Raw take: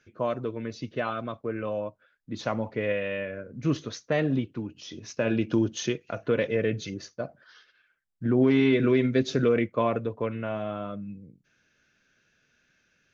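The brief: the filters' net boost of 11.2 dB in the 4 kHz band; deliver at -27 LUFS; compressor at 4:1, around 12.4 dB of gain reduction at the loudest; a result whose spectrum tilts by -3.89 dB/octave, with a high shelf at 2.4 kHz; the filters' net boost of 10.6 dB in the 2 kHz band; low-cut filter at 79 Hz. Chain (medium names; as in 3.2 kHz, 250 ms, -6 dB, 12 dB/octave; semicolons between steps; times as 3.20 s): high-pass 79 Hz; peaking EQ 2 kHz +7.5 dB; treble shelf 2.4 kHz +8 dB; peaking EQ 4 kHz +4.5 dB; compression 4:1, threshold -31 dBFS; trim +7.5 dB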